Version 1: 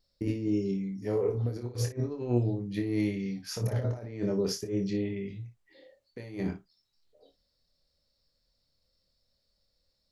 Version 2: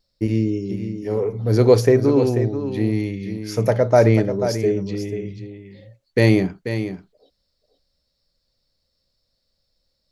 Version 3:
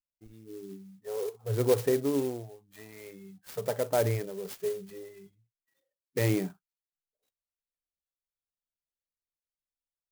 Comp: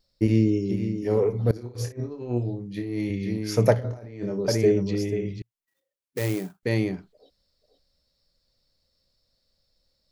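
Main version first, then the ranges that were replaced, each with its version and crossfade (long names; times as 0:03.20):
2
0:01.51–0:03.10: punch in from 1
0:03.75–0:04.48: punch in from 1
0:05.42–0:06.63: punch in from 3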